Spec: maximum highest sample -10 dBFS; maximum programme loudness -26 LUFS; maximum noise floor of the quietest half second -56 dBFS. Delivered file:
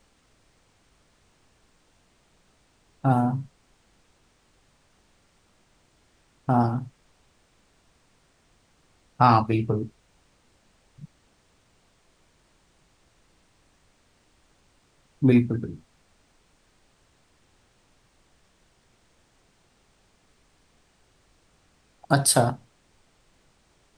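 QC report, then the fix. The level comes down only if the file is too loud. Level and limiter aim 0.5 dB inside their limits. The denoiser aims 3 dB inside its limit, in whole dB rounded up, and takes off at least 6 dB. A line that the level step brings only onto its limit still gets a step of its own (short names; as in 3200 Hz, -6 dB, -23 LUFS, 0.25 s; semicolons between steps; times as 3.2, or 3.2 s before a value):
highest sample -4.5 dBFS: fail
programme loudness -23.5 LUFS: fail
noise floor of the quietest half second -64 dBFS: OK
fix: gain -3 dB; limiter -10.5 dBFS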